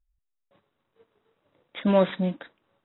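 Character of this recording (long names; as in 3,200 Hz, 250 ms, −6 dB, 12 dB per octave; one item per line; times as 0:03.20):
a buzz of ramps at a fixed pitch in blocks of 8 samples
AAC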